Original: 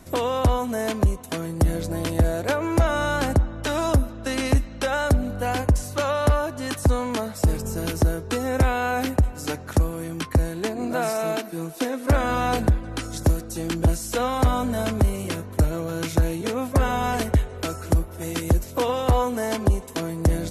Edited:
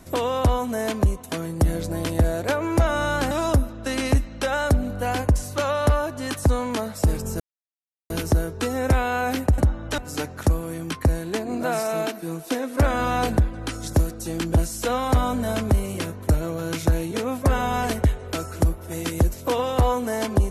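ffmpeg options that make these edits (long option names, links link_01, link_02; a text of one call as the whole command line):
ffmpeg -i in.wav -filter_complex "[0:a]asplit=5[link_01][link_02][link_03][link_04][link_05];[link_01]atrim=end=3.312[link_06];[link_02]atrim=start=3.708:end=7.8,asetpts=PTS-STARTPTS,afade=type=out:start_time=4.088:duration=0.004:curve=hsin,apad=pad_dur=0.7[link_07];[link_03]atrim=start=7.8:end=9.282,asetpts=PTS-STARTPTS,afade=type=in:duration=0.004:curve=hsin[link_08];[link_04]atrim=start=3.308:end=3.712[link_09];[link_05]atrim=start=9.278[link_10];[link_07][link_08]concat=n=2:v=0:a=1[link_11];[link_06][link_11]acrossfade=duration=0.004:curve1=hsin:curve2=hsin[link_12];[link_12][link_09]acrossfade=duration=0.004:curve1=hsin:curve2=hsin[link_13];[link_13][link_10]acrossfade=duration=0.004:curve1=hsin:curve2=hsin" out.wav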